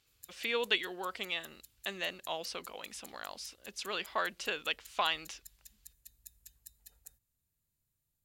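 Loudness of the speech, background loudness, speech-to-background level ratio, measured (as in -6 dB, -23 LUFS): -36.5 LUFS, -55.5 LUFS, 19.0 dB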